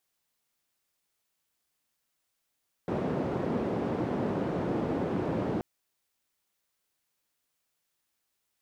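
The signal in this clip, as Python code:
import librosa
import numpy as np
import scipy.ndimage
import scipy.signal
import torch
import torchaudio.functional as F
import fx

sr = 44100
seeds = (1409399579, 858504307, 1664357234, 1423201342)

y = fx.band_noise(sr, seeds[0], length_s=2.73, low_hz=140.0, high_hz=390.0, level_db=-30.5)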